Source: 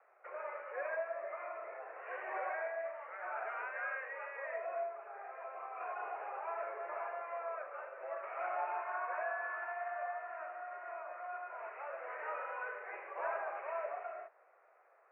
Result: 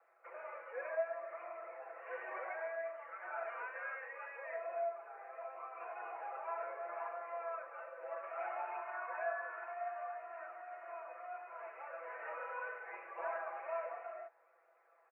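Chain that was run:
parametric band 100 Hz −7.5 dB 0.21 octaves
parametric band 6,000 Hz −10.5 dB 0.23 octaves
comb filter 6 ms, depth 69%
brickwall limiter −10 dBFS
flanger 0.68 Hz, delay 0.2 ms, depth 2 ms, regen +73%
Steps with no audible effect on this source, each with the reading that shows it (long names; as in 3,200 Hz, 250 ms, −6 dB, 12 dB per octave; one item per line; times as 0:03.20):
parametric band 100 Hz: nothing at its input below 340 Hz
parametric band 6,000 Hz: nothing at its input above 2,600 Hz
brickwall limiter −10 dBFS: peak of its input −24.0 dBFS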